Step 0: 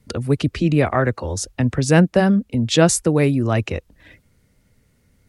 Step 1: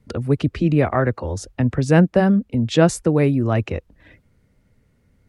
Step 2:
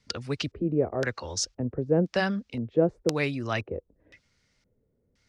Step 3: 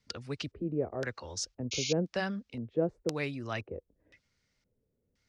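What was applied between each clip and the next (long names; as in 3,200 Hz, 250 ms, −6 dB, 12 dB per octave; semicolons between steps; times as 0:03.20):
high-shelf EQ 3,200 Hz −11 dB
auto-filter low-pass square 0.97 Hz 450–5,500 Hz; tilt shelving filter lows −9 dB; level −5.5 dB
sound drawn into the spectrogram noise, 0:01.71–0:01.93, 2,100–7,000 Hz −28 dBFS; level −7 dB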